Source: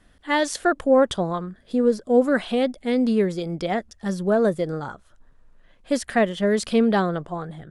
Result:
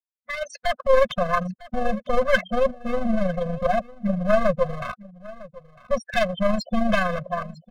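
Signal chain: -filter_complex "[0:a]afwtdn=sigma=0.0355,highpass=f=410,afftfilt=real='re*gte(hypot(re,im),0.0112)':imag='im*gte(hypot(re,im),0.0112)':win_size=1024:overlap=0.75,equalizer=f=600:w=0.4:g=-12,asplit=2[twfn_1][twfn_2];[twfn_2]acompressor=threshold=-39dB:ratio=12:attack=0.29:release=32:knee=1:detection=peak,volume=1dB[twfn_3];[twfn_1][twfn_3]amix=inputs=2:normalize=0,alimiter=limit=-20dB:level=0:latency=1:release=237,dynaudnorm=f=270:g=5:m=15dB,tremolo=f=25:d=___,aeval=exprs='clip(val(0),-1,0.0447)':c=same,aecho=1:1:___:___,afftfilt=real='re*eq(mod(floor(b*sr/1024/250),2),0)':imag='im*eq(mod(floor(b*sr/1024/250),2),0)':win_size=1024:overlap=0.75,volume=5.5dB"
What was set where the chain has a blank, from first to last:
0.462, 953, 0.1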